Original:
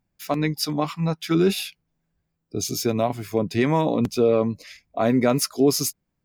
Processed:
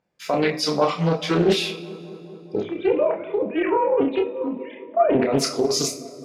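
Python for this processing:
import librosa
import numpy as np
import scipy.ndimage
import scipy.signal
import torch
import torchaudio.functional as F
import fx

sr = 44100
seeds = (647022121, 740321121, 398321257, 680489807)

y = fx.sine_speech(x, sr, at=(2.6, 5.15))
y = fx.highpass(y, sr, hz=360.0, slope=6)
y = fx.spec_gate(y, sr, threshold_db=-30, keep='strong')
y = fx.peak_eq(y, sr, hz=510.0, db=11.0, octaves=0.37)
y = fx.over_compress(y, sr, threshold_db=-22.0, ratio=-1.0)
y = fx.air_absorb(y, sr, metres=74.0)
y = fx.doubler(y, sr, ms=29.0, db=-5.0)
y = fx.echo_filtered(y, sr, ms=209, feedback_pct=81, hz=1700.0, wet_db=-17.5)
y = fx.rev_double_slope(y, sr, seeds[0], early_s=0.36, late_s=2.3, knee_db=-21, drr_db=4.5)
y = fx.doppler_dist(y, sr, depth_ms=0.36)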